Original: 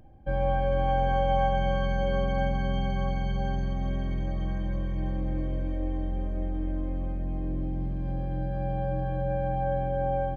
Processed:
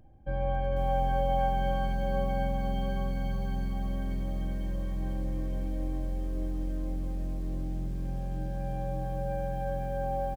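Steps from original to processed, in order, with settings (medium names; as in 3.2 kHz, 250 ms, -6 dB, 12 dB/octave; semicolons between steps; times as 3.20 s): bass shelf 220 Hz +2.5 dB; echo from a far wall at 24 m, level -20 dB; bit-crushed delay 499 ms, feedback 35%, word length 8-bit, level -6.5 dB; trim -5.5 dB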